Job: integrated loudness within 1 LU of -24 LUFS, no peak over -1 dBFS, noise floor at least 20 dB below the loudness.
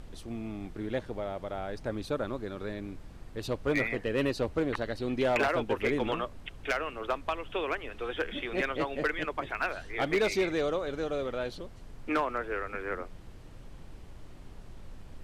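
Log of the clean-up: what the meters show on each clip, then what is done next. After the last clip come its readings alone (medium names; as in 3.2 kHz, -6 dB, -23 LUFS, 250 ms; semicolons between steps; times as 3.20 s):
clipped samples 0.4%; clipping level -21.0 dBFS; noise floor -48 dBFS; noise floor target -53 dBFS; loudness -32.5 LUFS; peak level -21.0 dBFS; loudness target -24.0 LUFS
-> clip repair -21 dBFS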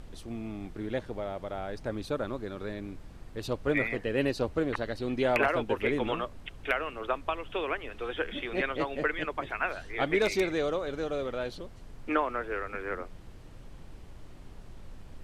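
clipped samples 0.0%; noise floor -48 dBFS; noise floor target -52 dBFS
-> noise print and reduce 6 dB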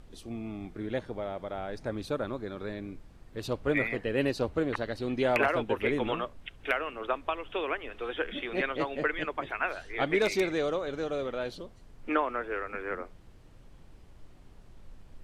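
noise floor -53 dBFS; loudness -32.0 LUFS; peak level -12.0 dBFS; loudness target -24.0 LUFS
-> trim +8 dB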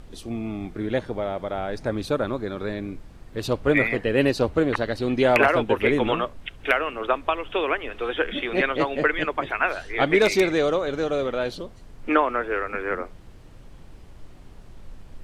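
loudness -24.0 LUFS; peak level -4.0 dBFS; noise floor -45 dBFS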